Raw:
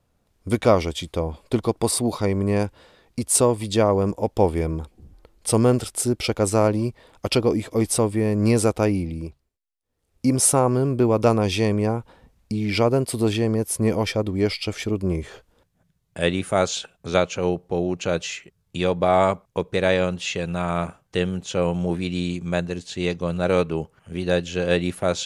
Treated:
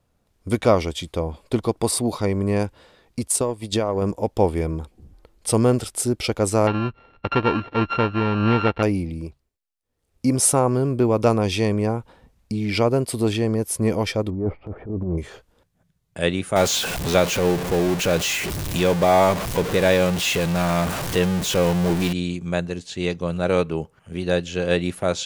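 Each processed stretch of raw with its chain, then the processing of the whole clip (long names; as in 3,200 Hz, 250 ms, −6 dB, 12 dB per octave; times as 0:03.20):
0:03.27–0:04.02: transient designer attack +7 dB, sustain −10 dB + downward compressor 5 to 1, threshold −17 dBFS
0:06.67–0:08.83: samples sorted by size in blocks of 32 samples + inverse Chebyshev low-pass filter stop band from 9,500 Hz, stop band 60 dB
0:14.30–0:15.18: low-pass filter 1,000 Hz 24 dB per octave + transient designer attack −11 dB, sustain +8 dB
0:16.56–0:22.13: converter with a step at zero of −21 dBFS + notch filter 1,300 Hz, Q 20
whole clip: no processing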